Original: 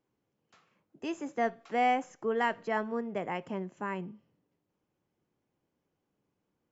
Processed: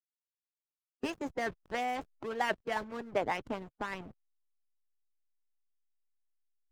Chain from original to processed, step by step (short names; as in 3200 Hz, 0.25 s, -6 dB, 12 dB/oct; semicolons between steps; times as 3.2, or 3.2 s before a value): backlash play -38 dBFS; harmonic-percussive split harmonic -15 dB; gain +7 dB